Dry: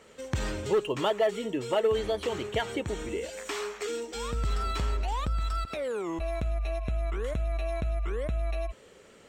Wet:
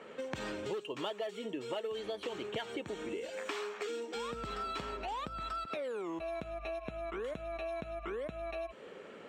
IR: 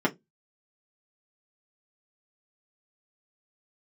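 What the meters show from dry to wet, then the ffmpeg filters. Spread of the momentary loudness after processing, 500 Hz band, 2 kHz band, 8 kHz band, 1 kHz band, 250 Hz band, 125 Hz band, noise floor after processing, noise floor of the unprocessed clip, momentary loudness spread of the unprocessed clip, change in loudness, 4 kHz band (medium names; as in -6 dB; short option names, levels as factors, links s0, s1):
2 LU, -8.0 dB, -5.5 dB, -11.0 dB, -5.5 dB, -6.5 dB, -18.0 dB, -51 dBFS, -55 dBFS, 8 LU, -8.5 dB, -6.0 dB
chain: -filter_complex "[0:a]acrossover=split=150 3200:gain=0.0891 1 0.126[s0][s1][s2];[s0][s1][s2]amix=inputs=3:normalize=0,bandreject=f=2000:w=19,acrossover=split=3800[s3][s4];[s3]acompressor=threshold=0.00708:ratio=6[s5];[s5][s4]amix=inputs=2:normalize=0,volume=1.88"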